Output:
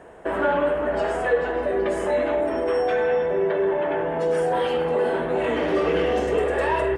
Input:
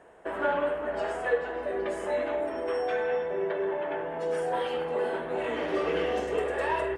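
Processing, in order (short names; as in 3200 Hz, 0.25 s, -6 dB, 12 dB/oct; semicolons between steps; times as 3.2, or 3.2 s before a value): low shelf 320 Hz +6.5 dB; in parallel at +2.5 dB: limiter -24 dBFS, peak gain reduction 11 dB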